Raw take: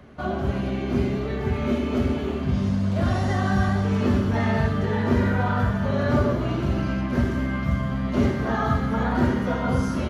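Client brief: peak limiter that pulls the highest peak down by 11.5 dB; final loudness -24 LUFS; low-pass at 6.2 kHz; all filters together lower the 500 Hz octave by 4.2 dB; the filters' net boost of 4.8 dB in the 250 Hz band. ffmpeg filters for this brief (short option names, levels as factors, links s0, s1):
-af "lowpass=6200,equalizer=f=250:t=o:g=7.5,equalizer=f=500:t=o:g=-8.5,volume=1.26,alimiter=limit=0.158:level=0:latency=1"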